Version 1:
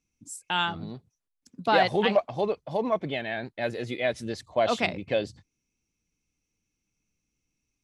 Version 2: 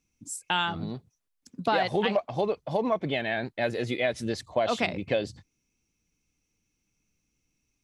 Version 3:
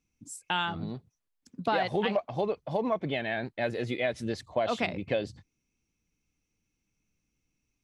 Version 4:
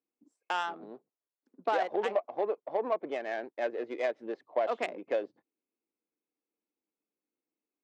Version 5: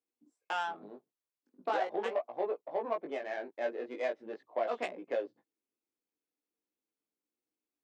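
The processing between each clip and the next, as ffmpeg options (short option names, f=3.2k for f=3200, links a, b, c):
-af "acompressor=threshold=-26dB:ratio=4,volume=3.5dB"
-af "bass=f=250:g=1,treble=f=4k:g=-4,volume=-2.5dB"
-af "adynamicsmooth=sensitivity=1:basefreq=930,highpass=f=340:w=0.5412,highpass=f=340:w=1.3066"
-af "flanger=delay=16.5:depth=4.1:speed=0.4"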